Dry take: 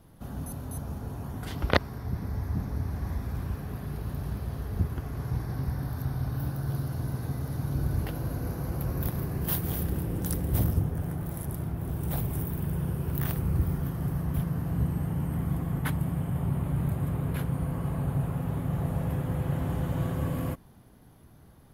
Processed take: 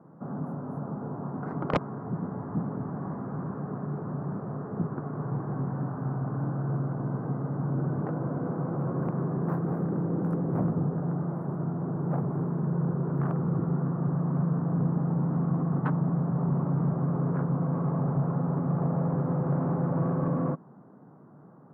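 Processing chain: elliptic band-pass 150–1300 Hz, stop band 40 dB; saturation -24 dBFS, distortion -16 dB; trim +6.5 dB

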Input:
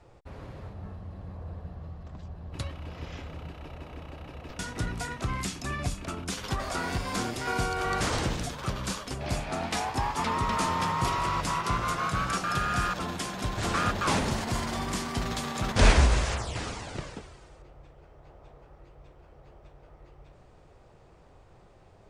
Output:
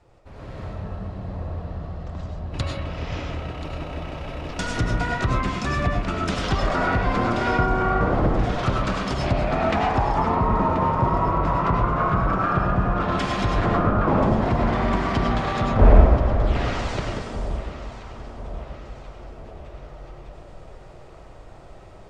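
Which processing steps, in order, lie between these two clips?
low-pass that closes with the level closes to 820 Hz, closed at -24.5 dBFS; level rider gain up to 10 dB; on a send: echo whose repeats swap between lows and highs 516 ms, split 980 Hz, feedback 69%, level -10.5 dB; on the sum: algorithmic reverb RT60 0.45 s, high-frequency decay 0.55×, pre-delay 60 ms, DRR 1 dB; trim -2 dB

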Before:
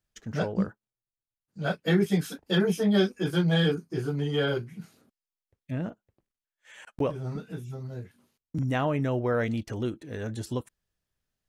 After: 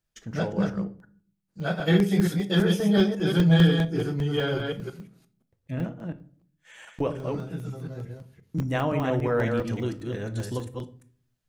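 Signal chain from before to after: chunks repeated in reverse 175 ms, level -4 dB; simulated room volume 450 m³, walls furnished, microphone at 0.68 m; crackling interface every 0.20 s, samples 64, zero, from 1.00 s

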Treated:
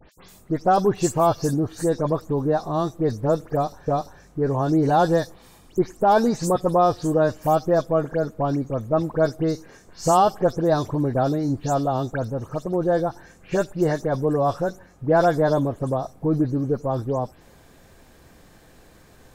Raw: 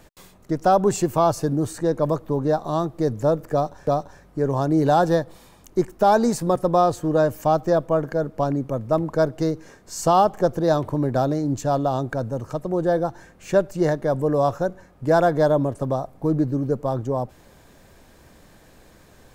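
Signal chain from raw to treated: delay that grows with frequency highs late, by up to 119 ms

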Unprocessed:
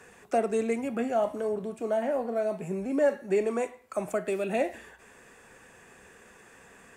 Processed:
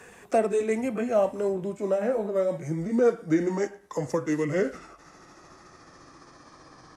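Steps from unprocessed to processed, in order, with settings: pitch bend over the whole clip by -7 st starting unshifted; band-stop 1.4 kHz, Q 28; trim +4 dB

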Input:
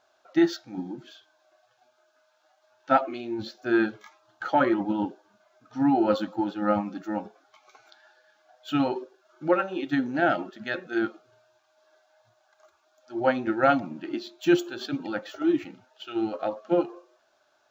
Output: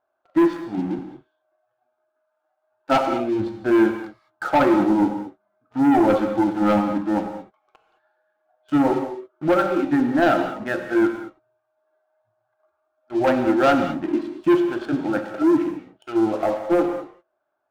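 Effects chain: low-pass 1.4 kHz 12 dB/octave; waveshaping leveller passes 3; gated-style reverb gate 240 ms flat, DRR 6 dB; trim -2.5 dB

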